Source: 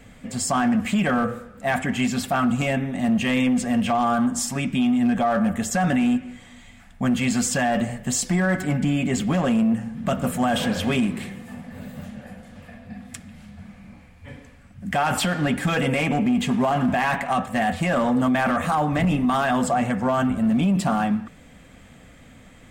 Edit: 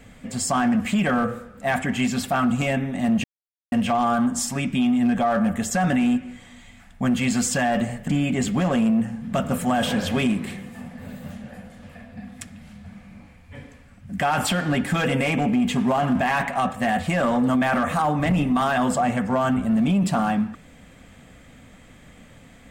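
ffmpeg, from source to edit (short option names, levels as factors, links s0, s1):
-filter_complex "[0:a]asplit=4[s0][s1][s2][s3];[s0]atrim=end=3.24,asetpts=PTS-STARTPTS,afade=t=out:st=3.236:d=0.004:c=hsin[s4];[s1]atrim=start=3.24:end=3.72,asetpts=PTS-STARTPTS,volume=0[s5];[s2]atrim=start=3.72:end=8.082,asetpts=PTS-STARTPTS,afade=t=in:d=0.004:c=hsin[s6];[s3]atrim=start=8.808[s7];[s4][s5][s6]concat=n=3:v=0:a=1[s8];[s8][s7]acrossfade=d=0.004:c1=hsin:c2=hsin"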